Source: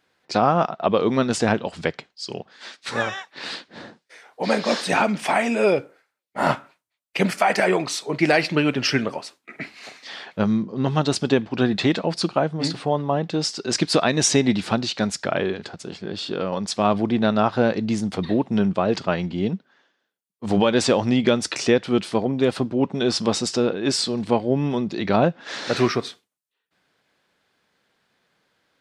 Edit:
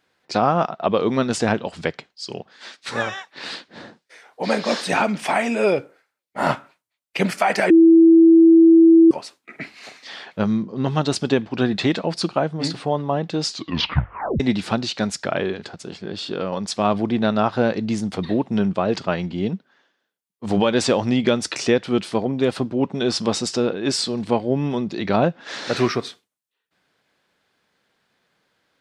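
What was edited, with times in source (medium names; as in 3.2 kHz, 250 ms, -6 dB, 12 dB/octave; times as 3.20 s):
7.70–9.11 s: bleep 329 Hz -7 dBFS
13.43 s: tape stop 0.97 s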